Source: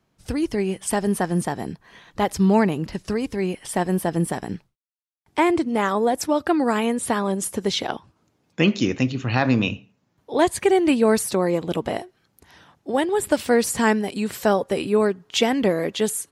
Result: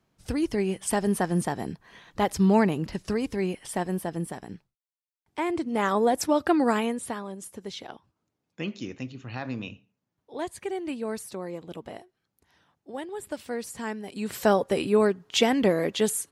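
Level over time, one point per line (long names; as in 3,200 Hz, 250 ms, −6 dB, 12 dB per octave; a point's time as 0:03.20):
0:03.37 −3 dB
0:04.37 −10.5 dB
0:05.40 −10.5 dB
0:05.93 −2 dB
0:06.70 −2 dB
0:07.30 −14.5 dB
0:13.97 −14.5 dB
0:14.38 −2 dB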